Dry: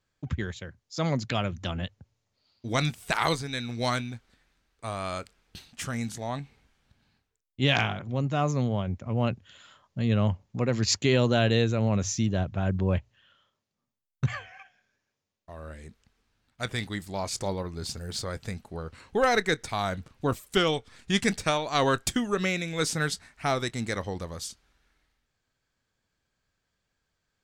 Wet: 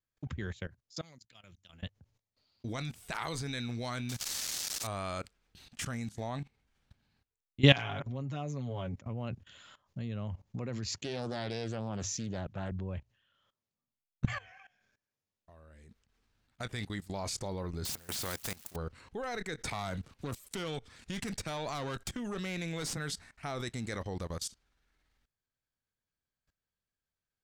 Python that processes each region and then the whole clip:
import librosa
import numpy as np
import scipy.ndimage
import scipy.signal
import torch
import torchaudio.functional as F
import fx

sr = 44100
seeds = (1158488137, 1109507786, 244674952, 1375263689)

y = fx.chain(x, sr, fx.pre_emphasis(coefficient=0.9),
    fx.level_steps(step_db=19), at=(1.01, 1.83))
y = fx.chain(y, sr, fx.crossing_spikes(level_db=-31.0),
    fx.peak_eq(hz=5900.0, db=13.0, octaves=1.8),
    fx.resample_linear(factor=2), at=(4.09, 4.87))
y = fx.chain(y, sr, fx.low_shelf(hz=67.0, db=-9.5),
    fx.comb(ms=7.2, depth=0.75), at=(7.62, 9.02))
y = fx.chain(y, sr, fx.highpass(hz=170.0, slope=6),
    fx.doppler_dist(depth_ms=0.32), at=(10.98, 12.72))
y = fx.chain(y, sr, fx.crossing_spikes(level_db=-38.0),
    fx.low_shelf(hz=64.0, db=-6.5),
    fx.spectral_comp(ratio=2.0), at=(17.85, 18.76))
y = fx.chain(y, sr, fx.tube_stage(drive_db=23.0, bias=0.45),
    fx.band_squash(depth_pct=70), at=(19.65, 22.97))
y = fx.low_shelf(y, sr, hz=140.0, db=3.0)
y = fx.level_steps(y, sr, step_db=19)
y = F.gain(torch.from_numpy(y), 1.0).numpy()